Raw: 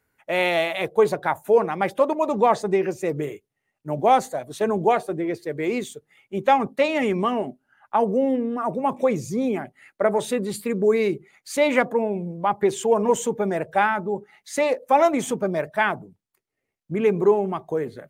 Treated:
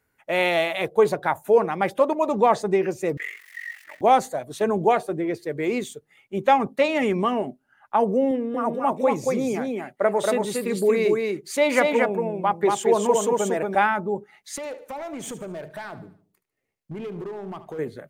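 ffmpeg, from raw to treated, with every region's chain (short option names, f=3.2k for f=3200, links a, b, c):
-filter_complex "[0:a]asettb=1/sr,asplit=3[a][b][c];[a]atrim=end=3.174[d];[b]atrim=start=3.17:end=4.01,asetpts=PTS-STARTPTS,afade=t=in:d=0.004:c=qsin,afade=t=out:st=0.836:d=0.004:c=qsin,aeval=exprs='val(0)+0.5*0.00794*sgn(val(0))':c=same,aeval=exprs='val(0)*sin(2*PI*23*n/s)':c=same,highpass=f=1.9k:t=q:w=10[e];[c]atrim=start=4.006[f];[d][e]acrossfade=d=0.004:c1=hsin:c2=qsin[g];[g][f]acrossfade=d=0.004:c1=qsin:c2=hsin,asettb=1/sr,asplit=3[h][i][j];[h]atrim=end=8.314[k];[i]atrim=start=8.31:end=13.75,asetpts=PTS-STARTPTS,afade=t=in:d=0.004:c=qsin,afade=t=out:st=5.436:d=0.004:c=qsin,lowshelf=f=130:g=-11.5,aecho=1:1:232:0.708,atrim=end_sample=239904[l];[j]atrim=start=13.746[m];[k][l]acrossfade=d=0.004:c1=hsin:c2=qsin[n];[n][m]acrossfade=d=0.004:c1=qsin:c2=hsin,asettb=1/sr,asplit=3[o][p][q];[o]atrim=end=14.564[r];[p]atrim=start=14.56:end=17.79,asetpts=PTS-STARTPTS,afade=t=in:d=0.004:c=qsin,afade=t=out:st=3.226:d=0.004:c=qsin,acompressor=threshold=-29dB:ratio=8:attack=3.2:release=140:knee=1:detection=peak,asoftclip=type=hard:threshold=-29.5dB,aecho=1:1:74|148|222|296:0.178|0.0765|0.0329|0.0141,atrim=end_sample=142443[s];[q]atrim=start=17.786[t];[r][s]acrossfade=d=0.004:c1=hsin:c2=qsin[u];[u][t]acrossfade=d=0.004:c1=qsin:c2=hsin"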